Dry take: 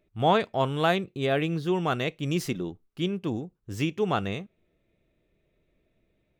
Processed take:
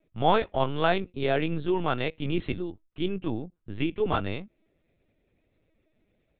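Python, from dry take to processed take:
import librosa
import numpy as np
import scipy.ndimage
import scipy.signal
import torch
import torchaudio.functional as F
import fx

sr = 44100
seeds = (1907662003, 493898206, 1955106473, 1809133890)

y = fx.lpc_vocoder(x, sr, seeds[0], excitation='pitch_kept', order=16)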